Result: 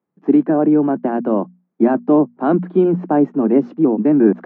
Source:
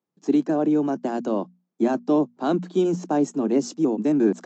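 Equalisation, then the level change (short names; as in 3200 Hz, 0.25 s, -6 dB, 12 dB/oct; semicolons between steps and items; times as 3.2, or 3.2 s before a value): LPF 2100 Hz 24 dB/oct; bell 200 Hz +2 dB; +6.5 dB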